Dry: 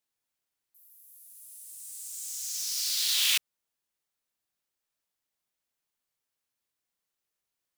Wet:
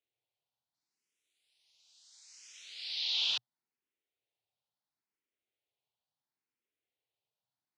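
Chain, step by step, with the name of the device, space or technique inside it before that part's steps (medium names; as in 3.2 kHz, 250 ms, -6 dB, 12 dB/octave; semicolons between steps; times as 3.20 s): barber-pole phaser into a guitar amplifier (barber-pole phaser +0.73 Hz; saturation -19 dBFS, distortion -22 dB; cabinet simulation 110–4200 Hz, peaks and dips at 120 Hz +9 dB, 180 Hz -4 dB, 410 Hz +4 dB, 770 Hz +3 dB, 1.2 kHz -8 dB, 1.7 kHz -6 dB)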